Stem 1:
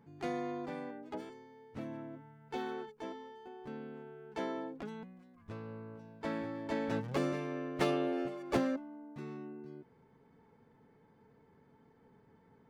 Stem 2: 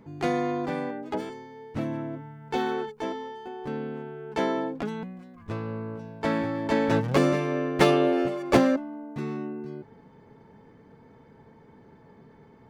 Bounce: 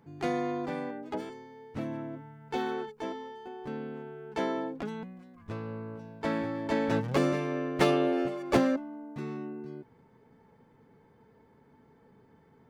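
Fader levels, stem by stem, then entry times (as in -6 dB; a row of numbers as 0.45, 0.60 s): +2.5, -12.5 dB; 0.00, 0.00 s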